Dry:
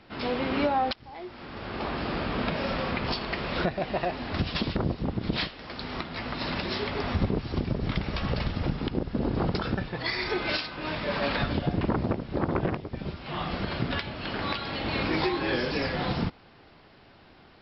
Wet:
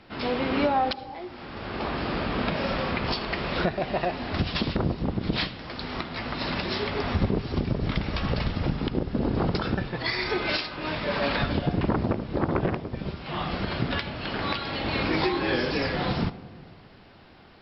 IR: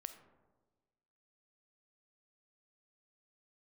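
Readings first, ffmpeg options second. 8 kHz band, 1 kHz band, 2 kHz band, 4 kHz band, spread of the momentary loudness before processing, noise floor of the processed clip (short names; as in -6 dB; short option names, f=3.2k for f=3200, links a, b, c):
n/a, +2.0 dB, +2.0 dB, +2.0 dB, 7 LU, -50 dBFS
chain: -filter_complex "[0:a]asplit=2[a][b];[1:a]atrim=start_sample=2205,asetrate=27342,aresample=44100[c];[b][c]afir=irnorm=-1:irlink=0,volume=-1.5dB[d];[a][d]amix=inputs=2:normalize=0,volume=-2.5dB"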